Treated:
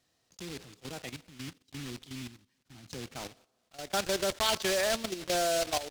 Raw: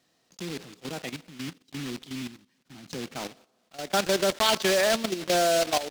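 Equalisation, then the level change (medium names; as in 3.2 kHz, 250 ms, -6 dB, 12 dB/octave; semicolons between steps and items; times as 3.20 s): resonant low shelf 130 Hz +8 dB, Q 1.5; peaking EQ 9.4 kHz +3 dB 1.8 oct; -6.0 dB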